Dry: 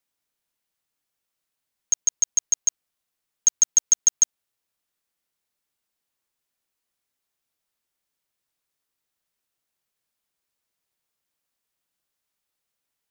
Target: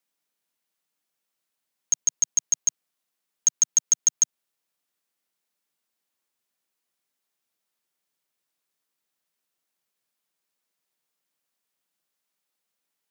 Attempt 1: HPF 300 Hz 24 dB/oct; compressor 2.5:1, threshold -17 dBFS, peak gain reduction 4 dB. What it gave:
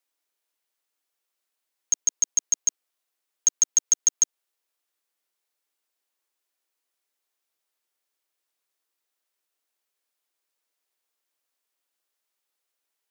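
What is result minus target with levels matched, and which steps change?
250 Hz band -5.0 dB
change: HPF 140 Hz 24 dB/oct

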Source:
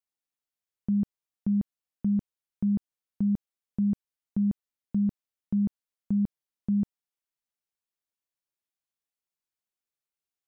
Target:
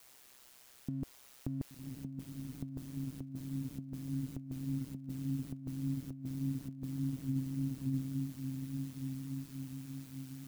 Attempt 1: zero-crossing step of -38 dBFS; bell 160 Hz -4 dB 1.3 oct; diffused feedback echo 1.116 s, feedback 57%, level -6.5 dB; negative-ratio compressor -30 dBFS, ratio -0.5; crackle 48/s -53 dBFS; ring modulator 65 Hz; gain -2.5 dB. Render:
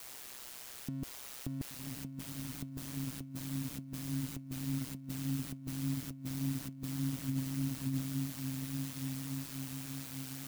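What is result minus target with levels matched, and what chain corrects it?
zero-crossing step: distortion +11 dB
zero-crossing step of -49.5 dBFS; bell 160 Hz -4 dB 1.3 oct; diffused feedback echo 1.116 s, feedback 57%, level -6.5 dB; negative-ratio compressor -30 dBFS, ratio -0.5; crackle 48/s -53 dBFS; ring modulator 65 Hz; gain -2.5 dB

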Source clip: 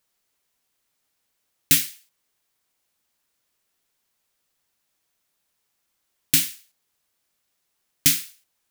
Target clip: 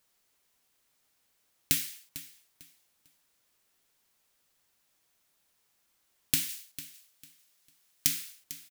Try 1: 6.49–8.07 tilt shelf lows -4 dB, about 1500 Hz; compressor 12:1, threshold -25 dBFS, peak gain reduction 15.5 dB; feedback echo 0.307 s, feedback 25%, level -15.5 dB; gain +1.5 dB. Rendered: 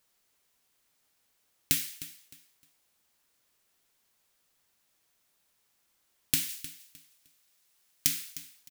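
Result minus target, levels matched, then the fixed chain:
echo 0.142 s early
6.49–8.07 tilt shelf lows -4 dB, about 1500 Hz; compressor 12:1, threshold -25 dBFS, peak gain reduction 15.5 dB; feedback echo 0.449 s, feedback 25%, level -15.5 dB; gain +1.5 dB

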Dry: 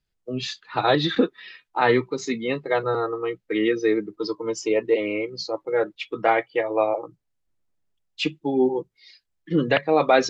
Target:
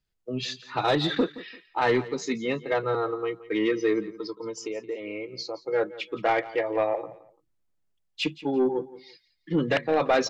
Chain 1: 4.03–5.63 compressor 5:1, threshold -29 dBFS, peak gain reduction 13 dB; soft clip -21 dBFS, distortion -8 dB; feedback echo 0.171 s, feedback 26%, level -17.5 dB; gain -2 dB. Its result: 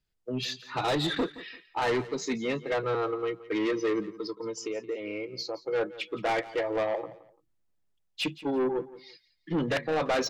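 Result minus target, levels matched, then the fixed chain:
soft clip: distortion +8 dB
4.03–5.63 compressor 5:1, threshold -29 dBFS, peak gain reduction 13 dB; soft clip -12.5 dBFS, distortion -16 dB; feedback echo 0.171 s, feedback 26%, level -17.5 dB; gain -2 dB

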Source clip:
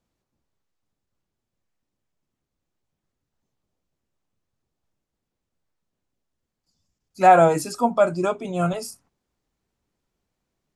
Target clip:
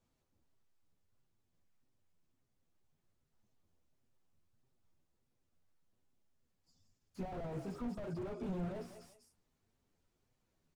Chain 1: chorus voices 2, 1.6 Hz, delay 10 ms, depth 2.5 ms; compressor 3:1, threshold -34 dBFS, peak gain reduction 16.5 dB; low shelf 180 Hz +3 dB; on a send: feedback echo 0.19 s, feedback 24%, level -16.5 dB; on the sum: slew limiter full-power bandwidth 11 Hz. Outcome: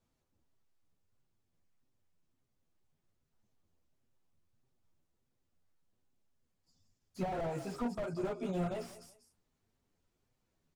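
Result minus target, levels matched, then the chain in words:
slew limiter: distortion -7 dB
chorus voices 2, 1.6 Hz, delay 10 ms, depth 2.5 ms; compressor 3:1, threshold -34 dBFS, peak gain reduction 16.5 dB; low shelf 180 Hz +3 dB; on a send: feedback echo 0.19 s, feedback 24%, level -16.5 dB; on the sum: slew limiter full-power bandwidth 4 Hz

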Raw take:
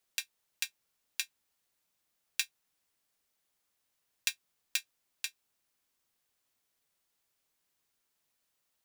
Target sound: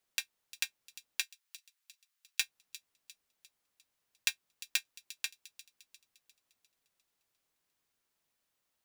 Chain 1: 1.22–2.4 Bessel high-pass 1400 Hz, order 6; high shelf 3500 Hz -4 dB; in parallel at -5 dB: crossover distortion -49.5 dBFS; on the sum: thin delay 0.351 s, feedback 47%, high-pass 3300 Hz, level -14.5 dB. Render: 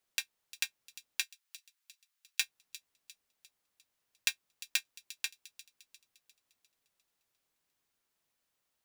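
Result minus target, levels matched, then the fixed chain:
crossover distortion: distortion -7 dB
1.22–2.4 Bessel high-pass 1400 Hz, order 6; high shelf 3500 Hz -4 dB; in parallel at -5 dB: crossover distortion -41 dBFS; on the sum: thin delay 0.351 s, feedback 47%, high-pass 3300 Hz, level -14.5 dB

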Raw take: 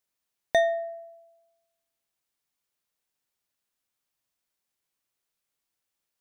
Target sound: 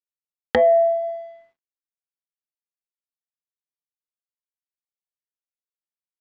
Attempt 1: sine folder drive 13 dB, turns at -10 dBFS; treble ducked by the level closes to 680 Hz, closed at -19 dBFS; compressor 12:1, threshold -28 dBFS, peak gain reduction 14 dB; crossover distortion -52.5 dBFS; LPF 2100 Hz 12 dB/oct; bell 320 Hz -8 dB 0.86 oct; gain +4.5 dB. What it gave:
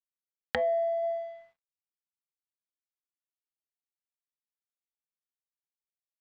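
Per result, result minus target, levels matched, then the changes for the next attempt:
compressor: peak gain reduction +10.5 dB; 250 Hz band -3.5 dB
change: compressor 12:1, threshold -16.5 dBFS, peak gain reduction 3.5 dB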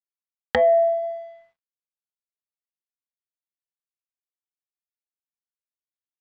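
250 Hz band -4.0 dB
change: bell 320 Hz +3 dB 0.86 oct

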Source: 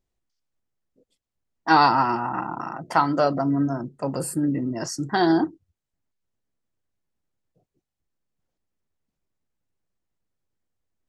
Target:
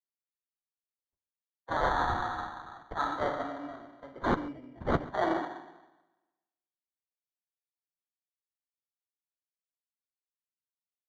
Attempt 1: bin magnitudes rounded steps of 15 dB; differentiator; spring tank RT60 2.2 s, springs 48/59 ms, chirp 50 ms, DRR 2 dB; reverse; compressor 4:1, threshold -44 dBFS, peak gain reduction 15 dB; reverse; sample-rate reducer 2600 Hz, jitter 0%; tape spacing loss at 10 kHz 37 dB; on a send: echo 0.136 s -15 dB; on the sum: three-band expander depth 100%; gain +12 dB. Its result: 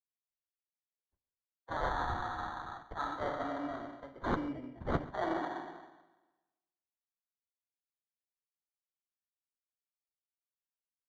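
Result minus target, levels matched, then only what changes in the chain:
compressor: peak gain reduction +6.5 dB
change: compressor 4:1, threshold -35.5 dBFS, peak gain reduction 8.5 dB

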